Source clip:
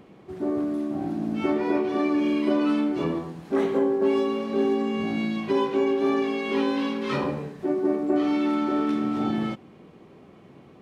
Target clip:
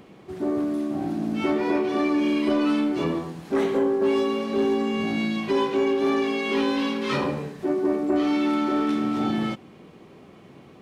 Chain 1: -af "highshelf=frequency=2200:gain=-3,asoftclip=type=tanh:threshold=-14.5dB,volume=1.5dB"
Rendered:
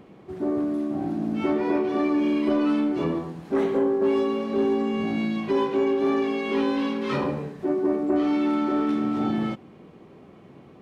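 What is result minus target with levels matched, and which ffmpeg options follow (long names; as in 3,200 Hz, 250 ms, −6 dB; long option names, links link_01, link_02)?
4,000 Hz band −5.5 dB
-af "highshelf=frequency=2200:gain=5.5,asoftclip=type=tanh:threshold=-14.5dB,volume=1.5dB"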